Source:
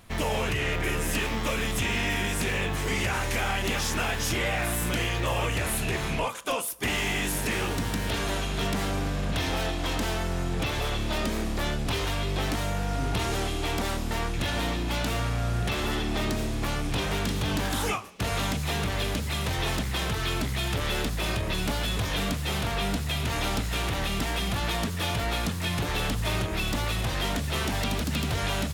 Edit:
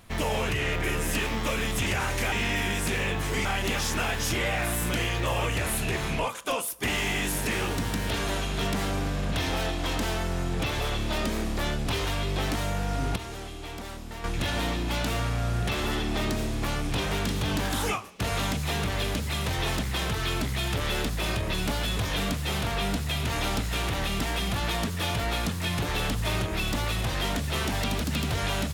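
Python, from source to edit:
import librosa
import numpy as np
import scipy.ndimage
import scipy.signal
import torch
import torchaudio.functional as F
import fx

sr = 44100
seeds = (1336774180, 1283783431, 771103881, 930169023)

y = fx.edit(x, sr, fx.move(start_s=2.99, length_s=0.46, to_s=1.86),
    fx.clip_gain(start_s=13.16, length_s=1.08, db=-9.5), tone=tone)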